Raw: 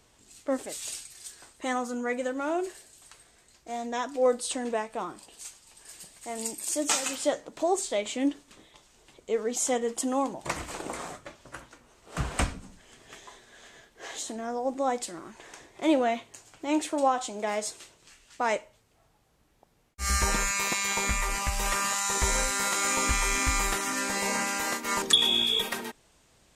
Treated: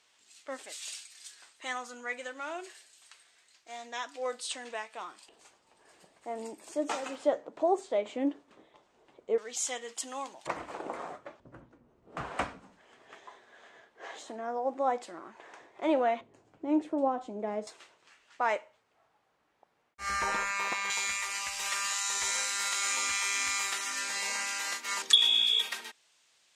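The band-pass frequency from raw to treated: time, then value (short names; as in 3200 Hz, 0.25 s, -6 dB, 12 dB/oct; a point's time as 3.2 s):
band-pass, Q 0.68
2900 Hz
from 5.29 s 600 Hz
from 9.38 s 3400 Hz
from 10.47 s 700 Hz
from 11.4 s 190 Hz
from 12.17 s 900 Hz
from 16.21 s 270 Hz
from 17.67 s 1200 Hz
from 20.9 s 3800 Hz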